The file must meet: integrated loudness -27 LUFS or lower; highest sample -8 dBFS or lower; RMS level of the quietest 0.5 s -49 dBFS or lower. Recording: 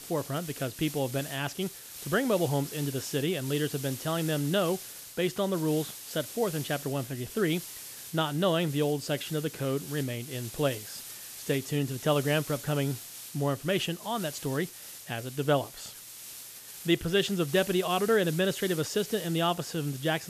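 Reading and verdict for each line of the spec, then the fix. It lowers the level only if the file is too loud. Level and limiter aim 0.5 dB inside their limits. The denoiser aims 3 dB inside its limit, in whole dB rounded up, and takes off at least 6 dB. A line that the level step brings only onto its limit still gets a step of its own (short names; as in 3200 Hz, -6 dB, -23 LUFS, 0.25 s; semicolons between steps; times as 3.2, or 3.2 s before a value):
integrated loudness -30.0 LUFS: OK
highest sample -13.0 dBFS: OK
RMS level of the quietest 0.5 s -45 dBFS: fail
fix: denoiser 7 dB, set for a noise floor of -45 dBFS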